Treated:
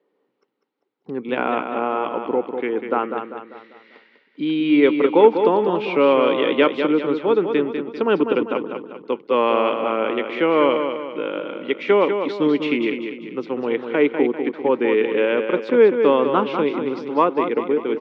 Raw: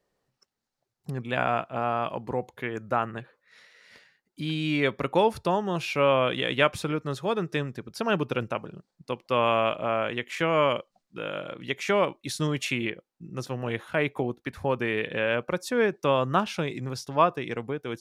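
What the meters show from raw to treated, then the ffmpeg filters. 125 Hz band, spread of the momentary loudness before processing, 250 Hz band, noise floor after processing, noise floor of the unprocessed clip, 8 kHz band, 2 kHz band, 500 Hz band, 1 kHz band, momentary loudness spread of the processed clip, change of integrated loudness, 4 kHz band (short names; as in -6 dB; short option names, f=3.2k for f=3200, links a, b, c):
-6.0 dB, 11 LU, +10.5 dB, -69 dBFS, -83 dBFS, under -20 dB, +3.0 dB, +9.5 dB, +5.0 dB, 12 LU, +8.0 dB, +1.5 dB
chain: -af "acontrast=53,highpass=f=240:w=0.5412,highpass=f=240:w=1.3066,equalizer=f=290:t=q:w=4:g=5,equalizer=f=440:t=q:w=4:g=5,equalizer=f=660:t=q:w=4:g=-10,equalizer=f=1.2k:t=q:w=4:g=-4,equalizer=f=1.7k:t=q:w=4:g=-9,equalizer=f=2.6k:t=q:w=4:g=-5,lowpass=f=2.9k:w=0.5412,lowpass=f=2.9k:w=1.3066,aecho=1:1:197|394|591|788|985:0.447|0.197|0.0865|0.0381|0.0167,volume=2.5dB"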